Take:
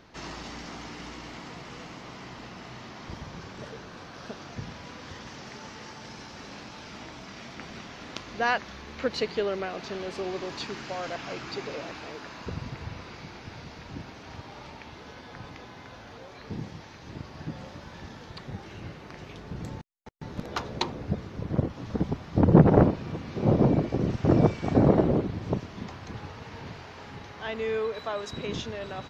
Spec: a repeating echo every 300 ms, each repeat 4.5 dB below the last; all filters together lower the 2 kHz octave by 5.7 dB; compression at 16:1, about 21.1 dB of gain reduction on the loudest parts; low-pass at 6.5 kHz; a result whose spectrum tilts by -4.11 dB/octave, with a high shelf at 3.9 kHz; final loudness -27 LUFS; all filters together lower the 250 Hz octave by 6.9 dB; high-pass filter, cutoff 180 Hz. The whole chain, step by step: high-pass 180 Hz; low-pass 6.5 kHz; peaking EQ 250 Hz -7.5 dB; peaking EQ 2 kHz -9 dB; treble shelf 3.9 kHz +6 dB; compression 16:1, threshold -37 dBFS; feedback delay 300 ms, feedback 60%, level -4.5 dB; trim +15 dB

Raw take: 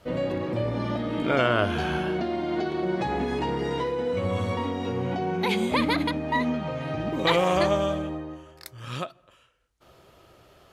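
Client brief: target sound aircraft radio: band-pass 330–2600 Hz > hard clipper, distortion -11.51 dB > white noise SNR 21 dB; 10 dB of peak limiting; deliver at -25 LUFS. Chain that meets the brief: peak limiter -19 dBFS; band-pass 330–2600 Hz; hard clipper -29 dBFS; white noise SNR 21 dB; trim +8 dB

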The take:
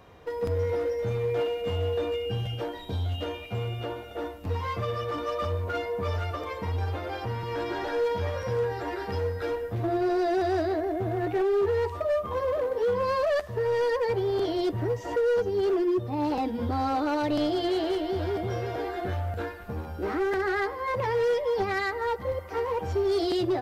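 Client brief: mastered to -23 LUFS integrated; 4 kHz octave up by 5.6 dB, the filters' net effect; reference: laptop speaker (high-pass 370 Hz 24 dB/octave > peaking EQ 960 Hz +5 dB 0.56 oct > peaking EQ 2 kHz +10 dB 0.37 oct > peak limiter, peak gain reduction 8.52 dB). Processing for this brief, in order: high-pass 370 Hz 24 dB/octave; peaking EQ 960 Hz +5 dB 0.56 oct; peaking EQ 2 kHz +10 dB 0.37 oct; peaking EQ 4 kHz +6.5 dB; trim +6 dB; peak limiter -14 dBFS

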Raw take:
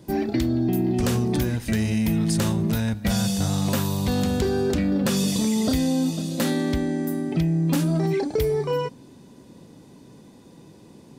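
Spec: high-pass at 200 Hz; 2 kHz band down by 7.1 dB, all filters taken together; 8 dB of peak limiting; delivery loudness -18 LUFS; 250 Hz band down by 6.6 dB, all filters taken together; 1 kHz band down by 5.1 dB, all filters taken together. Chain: high-pass 200 Hz; peaking EQ 250 Hz -5.5 dB; peaking EQ 1 kHz -5 dB; peaking EQ 2 kHz -7.5 dB; trim +12.5 dB; peak limiter -9 dBFS

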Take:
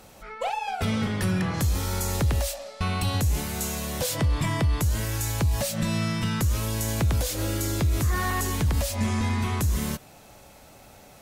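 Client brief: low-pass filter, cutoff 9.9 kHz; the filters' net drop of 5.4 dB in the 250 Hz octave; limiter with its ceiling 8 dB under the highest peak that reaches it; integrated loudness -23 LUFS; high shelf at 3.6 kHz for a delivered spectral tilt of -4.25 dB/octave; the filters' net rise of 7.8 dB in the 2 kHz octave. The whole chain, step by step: low-pass 9.9 kHz; peaking EQ 250 Hz -8 dB; peaking EQ 2 kHz +8.5 dB; treble shelf 3.6 kHz +3.5 dB; trim +4 dB; peak limiter -14 dBFS

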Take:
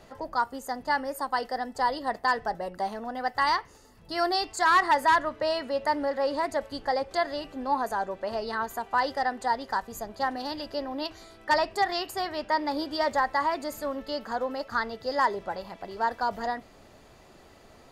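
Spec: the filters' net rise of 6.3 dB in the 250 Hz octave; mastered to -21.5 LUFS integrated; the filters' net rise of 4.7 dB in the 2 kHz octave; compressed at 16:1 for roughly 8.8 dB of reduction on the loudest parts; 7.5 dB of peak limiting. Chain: peaking EQ 250 Hz +7.5 dB; peaking EQ 2 kHz +5.5 dB; compression 16:1, threshold -23 dBFS; trim +10 dB; peak limiter -11 dBFS

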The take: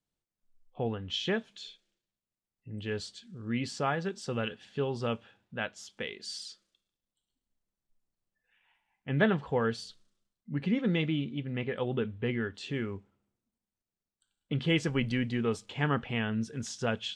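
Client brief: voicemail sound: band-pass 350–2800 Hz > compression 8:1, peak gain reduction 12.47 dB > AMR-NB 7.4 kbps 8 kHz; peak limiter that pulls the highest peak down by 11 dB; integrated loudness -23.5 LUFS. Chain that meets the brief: peak limiter -22.5 dBFS; band-pass 350–2800 Hz; compression 8:1, threshold -41 dBFS; trim +24.5 dB; AMR-NB 7.4 kbps 8 kHz

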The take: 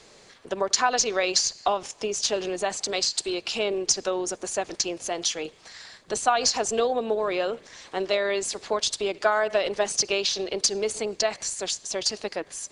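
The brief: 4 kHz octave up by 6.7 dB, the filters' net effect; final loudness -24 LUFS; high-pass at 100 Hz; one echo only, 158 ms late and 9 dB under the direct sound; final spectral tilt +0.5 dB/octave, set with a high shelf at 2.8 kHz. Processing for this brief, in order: high-pass 100 Hz; treble shelf 2.8 kHz +5 dB; peaking EQ 4 kHz +4 dB; delay 158 ms -9 dB; trim -3 dB

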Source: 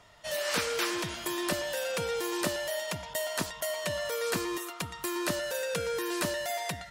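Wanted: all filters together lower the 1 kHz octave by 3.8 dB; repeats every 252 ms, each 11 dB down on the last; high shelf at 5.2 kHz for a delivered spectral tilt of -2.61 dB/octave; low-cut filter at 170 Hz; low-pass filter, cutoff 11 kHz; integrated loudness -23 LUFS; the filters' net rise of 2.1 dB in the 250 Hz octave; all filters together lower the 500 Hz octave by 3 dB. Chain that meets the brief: high-pass 170 Hz; low-pass 11 kHz; peaking EQ 250 Hz +8 dB; peaking EQ 500 Hz -5 dB; peaking EQ 1 kHz -4.5 dB; treble shelf 5.2 kHz +8.5 dB; feedback delay 252 ms, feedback 28%, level -11 dB; trim +7.5 dB

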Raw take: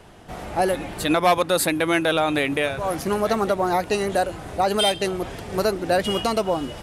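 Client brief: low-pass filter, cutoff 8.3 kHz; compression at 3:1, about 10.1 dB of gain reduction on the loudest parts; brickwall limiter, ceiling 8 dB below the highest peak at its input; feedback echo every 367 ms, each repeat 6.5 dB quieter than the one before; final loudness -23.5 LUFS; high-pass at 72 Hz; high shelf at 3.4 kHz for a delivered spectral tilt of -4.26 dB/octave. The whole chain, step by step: high-pass 72 Hz; low-pass 8.3 kHz; treble shelf 3.4 kHz -8.5 dB; compression 3:1, threshold -30 dBFS; peak limiter -25.5 dBFS; feedback delay 367 ms, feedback 47%, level -6.5 dB; trim +10 dB

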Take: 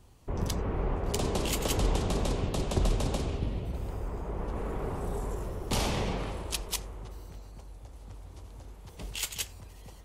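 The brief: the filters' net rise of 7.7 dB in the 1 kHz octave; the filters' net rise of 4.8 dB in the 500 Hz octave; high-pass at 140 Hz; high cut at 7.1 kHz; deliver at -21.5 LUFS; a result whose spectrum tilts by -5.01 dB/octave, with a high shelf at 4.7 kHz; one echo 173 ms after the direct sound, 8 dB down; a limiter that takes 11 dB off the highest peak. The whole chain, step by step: high-pass 140 Hz; low-pass 7.1 kHz; peaking EQ 500 Hz +4 dB; peaking EQ 1 kHz +8.5 dB; treble shelf 4.7 kHz -4 dB; peak limiter -22.5 dBFS; delay 173 ms -8 dB; trim +12 dB

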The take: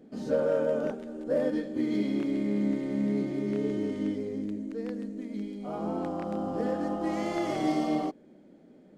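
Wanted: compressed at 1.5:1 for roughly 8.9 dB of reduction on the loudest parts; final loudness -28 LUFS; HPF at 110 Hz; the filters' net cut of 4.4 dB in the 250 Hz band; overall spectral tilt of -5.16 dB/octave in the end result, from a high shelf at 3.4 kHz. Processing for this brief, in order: high-pass 110 Hz; peaking EQ 250 Hz -5.5 dB; treble shelf 3.4 kHz +6 dB; compression 1.5:1, threshold -49 dBFS; trim +12.5 dB

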